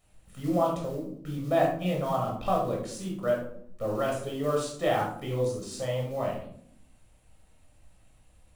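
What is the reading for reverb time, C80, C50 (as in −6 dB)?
0.65 s, 8.5 dB, 5.0 dB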